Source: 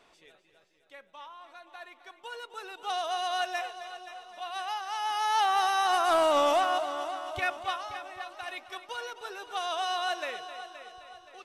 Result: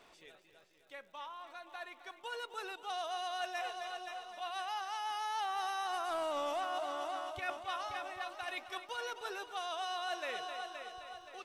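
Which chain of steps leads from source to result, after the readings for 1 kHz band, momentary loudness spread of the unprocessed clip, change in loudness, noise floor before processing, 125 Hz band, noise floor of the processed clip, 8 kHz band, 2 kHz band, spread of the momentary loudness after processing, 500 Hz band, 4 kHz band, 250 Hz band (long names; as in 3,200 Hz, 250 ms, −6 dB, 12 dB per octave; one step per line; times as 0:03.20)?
−9.0 dB, 23 LU, −10.0 dB, −64 dBFS, can't be measured, −63 dBFS, −8.5 dB, −7.0 dB, 12 LU, −9.5 dB, −8.0 dB, −10.0 dB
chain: reversed playback
downward compressor 4 to 1, threshold −37 dBFS, peak gain reduction 13 dB
reversed playback
surface crackle 130 per second −60 dBFS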